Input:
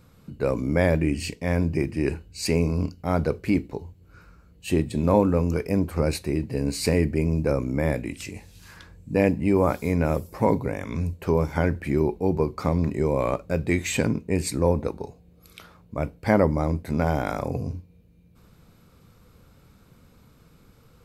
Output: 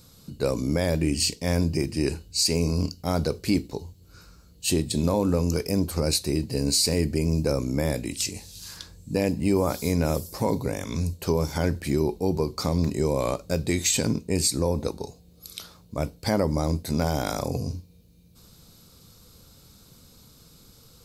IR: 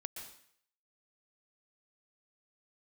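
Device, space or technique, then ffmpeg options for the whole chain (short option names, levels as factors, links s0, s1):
over-bright horn tweeter: -af "highshelf=f=3100:t=q:w=1.5:g=11.5,alimiter=limit=0.251:level=0:latency=1:release=111"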